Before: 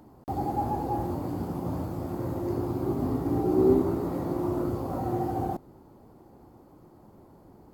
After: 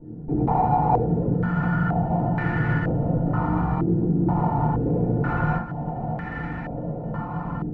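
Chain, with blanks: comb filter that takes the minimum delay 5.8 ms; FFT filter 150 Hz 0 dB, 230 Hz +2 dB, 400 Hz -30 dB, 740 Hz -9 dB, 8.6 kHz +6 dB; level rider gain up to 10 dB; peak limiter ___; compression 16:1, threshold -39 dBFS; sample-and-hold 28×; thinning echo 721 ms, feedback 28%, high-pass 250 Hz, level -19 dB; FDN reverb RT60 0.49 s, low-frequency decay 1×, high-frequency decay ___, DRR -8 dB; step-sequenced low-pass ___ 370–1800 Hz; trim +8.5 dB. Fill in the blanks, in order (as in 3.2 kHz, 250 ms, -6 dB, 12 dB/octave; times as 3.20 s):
-20 dBFS, 0.45×, 2.1 Hz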